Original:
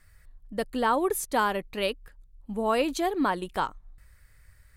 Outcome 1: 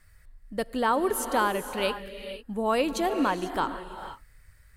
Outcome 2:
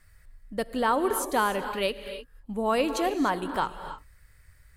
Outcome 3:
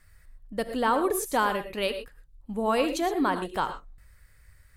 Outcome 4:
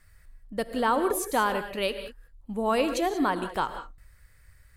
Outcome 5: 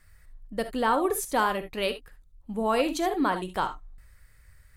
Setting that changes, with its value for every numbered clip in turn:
reverb whose tail is shaped and stops, gate: 520, 330, 140, 210, 90 milliseconds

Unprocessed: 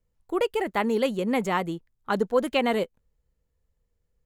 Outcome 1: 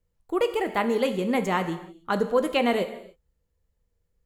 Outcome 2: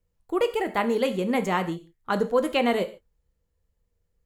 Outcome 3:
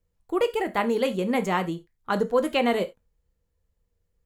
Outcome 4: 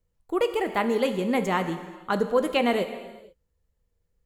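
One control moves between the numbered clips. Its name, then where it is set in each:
reverb whose tail is shaped and stops, gate: 330, 170, 110, 510 milliseconds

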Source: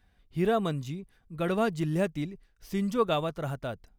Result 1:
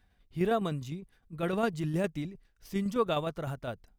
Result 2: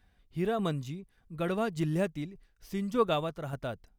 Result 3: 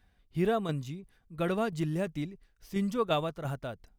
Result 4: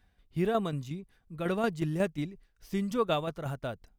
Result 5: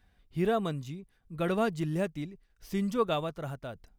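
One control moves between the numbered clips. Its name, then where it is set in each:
shaped tremolo, speed: 9.8, 1.7, 2.9, 5.5, 0.8 Hertz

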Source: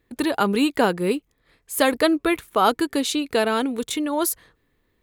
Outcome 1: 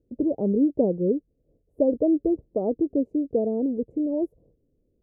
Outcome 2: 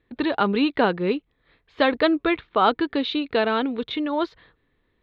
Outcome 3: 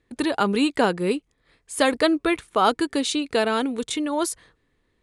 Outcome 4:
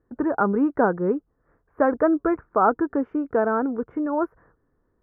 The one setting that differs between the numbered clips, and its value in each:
elliptic low-pass filter, frequency: 580, 3,900, 9,800, 1,500 Hertz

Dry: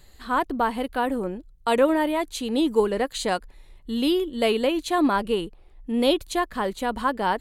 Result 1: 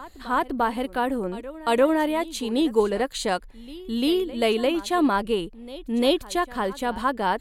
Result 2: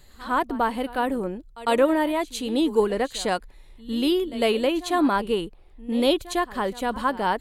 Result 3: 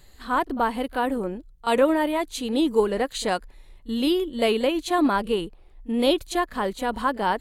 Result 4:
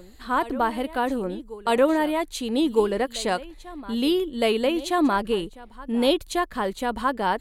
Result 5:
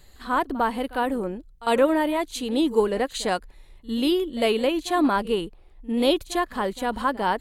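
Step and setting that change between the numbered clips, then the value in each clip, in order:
backwards echo, delay time: 347, 103, 31, 1,261, 52 milliseconds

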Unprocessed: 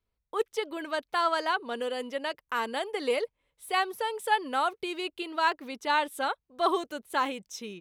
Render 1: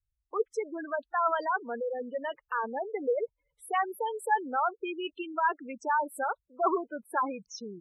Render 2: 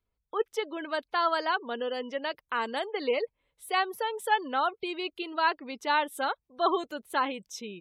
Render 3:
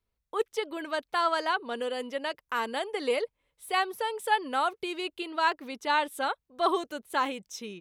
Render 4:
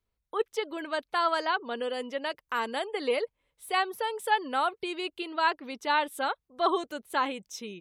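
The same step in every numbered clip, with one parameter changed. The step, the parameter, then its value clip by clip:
gate on every frequency bin, under each frame's peak: −10, −30, −55, −40 decibels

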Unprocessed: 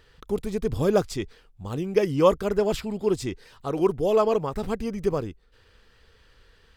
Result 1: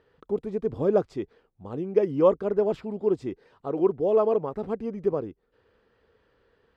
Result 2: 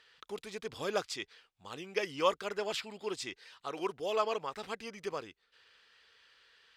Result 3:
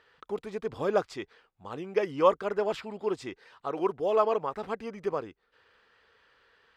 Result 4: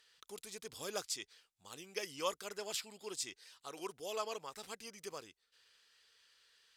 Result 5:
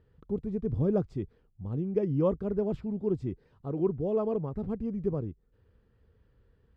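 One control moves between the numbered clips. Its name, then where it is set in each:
resonant band-pass, frequency: 430, 3,000, 1,200, 7,700, 130 Hertz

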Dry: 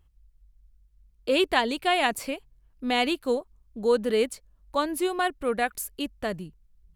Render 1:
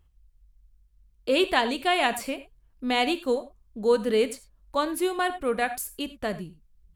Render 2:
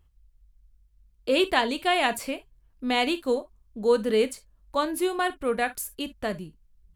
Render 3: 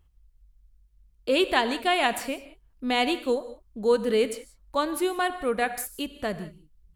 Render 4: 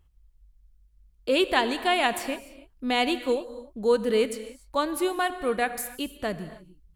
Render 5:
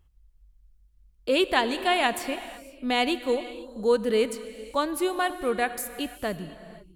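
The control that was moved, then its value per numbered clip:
reverb whose tail is shaped and stops, gate: 120, 80, 210, 320, 530 milliseconds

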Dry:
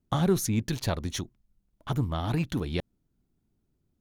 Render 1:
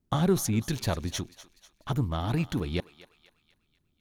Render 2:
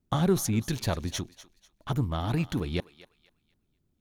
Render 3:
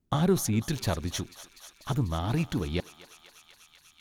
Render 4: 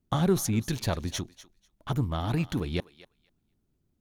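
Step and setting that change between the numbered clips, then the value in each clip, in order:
feedback echo with a high-pass in the loop, feedback: 50, 32, 88, 16%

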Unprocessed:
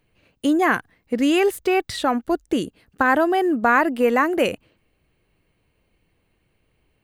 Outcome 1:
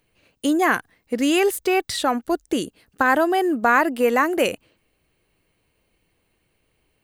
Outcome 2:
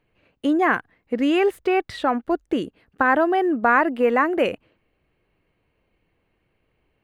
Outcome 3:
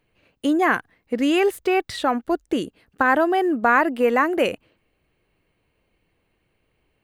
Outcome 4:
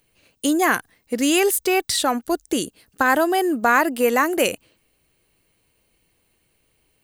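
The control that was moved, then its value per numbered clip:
bass and treble, treble: +6, −14, −4, +14 decibels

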